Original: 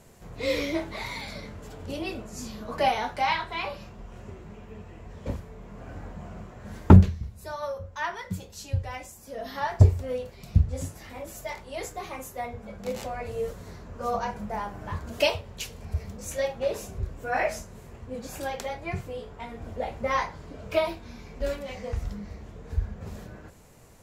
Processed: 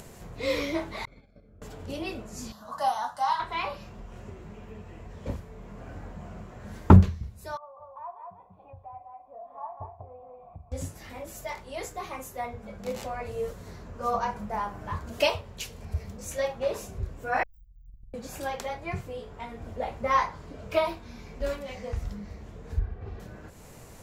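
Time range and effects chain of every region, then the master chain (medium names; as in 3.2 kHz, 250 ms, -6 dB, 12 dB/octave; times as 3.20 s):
1.05–1.62 s: gate -36 dBFS, range -20 dB + boxcar filter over 46 samples + peaking EQ 150 Hz -7 dB 3 oct
2.52–3.40 s: high-pass 450 Hz 6 dB/octave + dynamic bell 8.9 kHz, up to +7 dB, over -57 dBFS, Q 1.6 + static phaser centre 970 Hz, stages 4
7.57–10.72 s: cascade formant filter a + delay 193 ms -4.5 dB
17.43–18.14 s: comb filter that takes the minimum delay 5.9 ms + inverse Chebyshev band-stop 420–8300 Hz, stop band 80 dB + compression, threshold -47 dBFS
22.79–23.20 s: distance through air 260 m + comb 2.6 ms, depth 63%
whole clip: upward compressor, threshold -37 dBFS; dynamic bell 1.1 kHz, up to +6 dB, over -43 dBFS, Q 2.2; trim -1.5 dB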